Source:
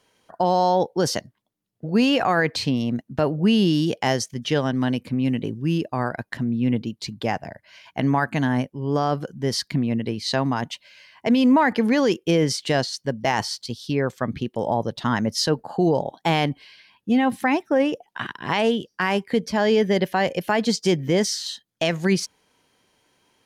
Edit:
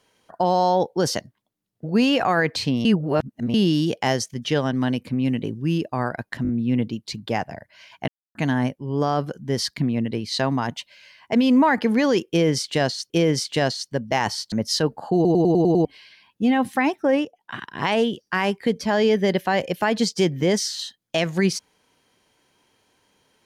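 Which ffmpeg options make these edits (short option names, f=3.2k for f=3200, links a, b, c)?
-filter_complex "[0:a]asplit=18[a][b][c][d][e][f][g][h][i][j][k][l][m][n][o][p][q][r];[a]atrim=end=2.852[s];[b]atrim=start=2.848:end=3.542,asetpts=PTS-STARTPTS,areverse[t];[c]atrim=start=3.538:end=6.452[u];[d]atrim=start=6.428:end=6.452[v];[e]atrim=start=6.428:end=6.452[w];[f]atrim=start=6.428:end=8.02,asetpts=PTS-STARTPTS,afade=t=out:st=1.588:d=0.004:c=hsin[x];[g]atrim=start=8.02:end=8.29,asetpts=PTS-STARTPTS,volume=0[y];[h]atrim=start=8.29:end=13.042,asetpts=PTS-STARTPTS,afade=t=in:d=0.004:c=hsin[z];[i]atrim=start=12.228:end=13.652[aa];[j]atrim=start=15.188:end=15.922[ab];[k]atrim=start=15.818:end=15.922[ac];[l]atrim=start=15.818:end=15.922[ad];[m]atrim=start=15.818:end=15.922[ae];[n]atrim=start=15.818:end=15.922[af];[o]atrim=start=15.818:end=15.922[ag];[p]atrim=start=15.818:end=15.922[ah];[q]atrim=start=16.518:end=17.92,asetpts=PTS-STARTPTS,afade=t=out:st=1.398:d=0.004:c=hsin:silence=0.211349[ai];[r]atrim=start=17.92,asetpts=PTS-STARTPTS,afade=t=in:d=0.51:silence=0.211349[aj];[s][t]acrossfade=d=0.004:c1=hsin:c2=hsin[ak];[ak][u]acrossfade=d=0.004:c1=hsin:c2=hsin[al];[al][v]acrossfade=d=0.004:c1=hsin:c2=hsin[am];[am][w]acrossfade=d=0.004:c1=hsin:c2=hsin[an];[x][y][z]concat=n=3:v=0:a=1[ao];[an][ao]acrossfade=d=0.004:c1=hsin:c2=hsin[ap];[ap][aa]acrossfade=d=0.004:c1=hsin:c2=hsin[aq];[aq][ab]acrossfade=d=0.004:c1=hsin:c2=hsin[ar];[ar][ac]acrossfade=d=0.004:c1=hsin:c2=hsin[as];[as][ad]acrossfade=d=0.004:c1=hsin:c2=hsin[at];[at][ae]acrossfade=d=0.004:c1=hsin:c2=hsin[au];[au][af]acrossfade=d=0.004:c1=hsin:c2=hsin[av];[av][ag]acrossfade=d=0.004:c1=hsin:c2=hsin[aw];[aw][ah]acrossfade=d=0.004:c1=hsin:c2=hsin[ax];[ai][aj]concat=n=2:v=0:a=1[ay];[ax][ay]acrossfade=d=0.004:c1=hsin:c2=hsin"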